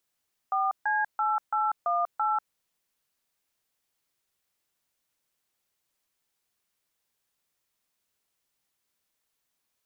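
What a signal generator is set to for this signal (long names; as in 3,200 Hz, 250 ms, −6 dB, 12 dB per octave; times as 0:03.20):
touch tones "4C8818", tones 192 ms, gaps 143 ms, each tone −26 dBFS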